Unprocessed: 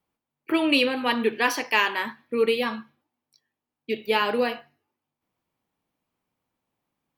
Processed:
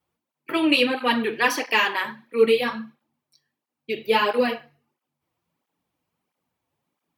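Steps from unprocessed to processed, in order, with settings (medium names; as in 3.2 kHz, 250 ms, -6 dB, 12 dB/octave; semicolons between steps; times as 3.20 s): on a send at -11 dB: reverberation RT60 0.30 s, pre-delay 11 ms; on the sum: cancelling through-zero flanger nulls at 1.5 Hz, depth 5.3 ms; trim +4.5 dB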